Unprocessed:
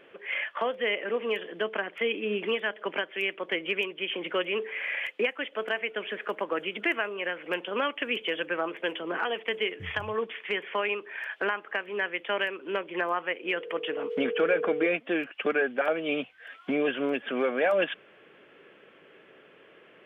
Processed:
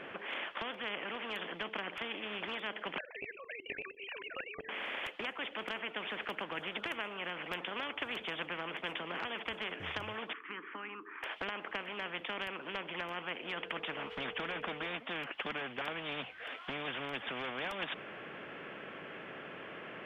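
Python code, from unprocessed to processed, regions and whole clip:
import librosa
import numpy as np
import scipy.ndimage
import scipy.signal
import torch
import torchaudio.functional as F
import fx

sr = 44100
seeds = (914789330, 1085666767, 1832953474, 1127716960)

y = fx.chain(x, sr, fx.sine_speech(),
    fx.comb(ms=1.2, depth=0.52),
    fx.level_steps(step_db=15), at=(2.98, 4.69))
y = fx.chain(y, sr, fx.double_bandpass(hz=600.0, octaves=2.0),
    fx.notch(hz=760.0, q=20.0), at=(10.33, 11.23))
y = fx.lowpass(y, sr, hz=2000.0, slope=6)
y = fx.spectral_comp(y, sr, ratio=4.0)
y = y * librosa.db_to_amplitude(-5.5)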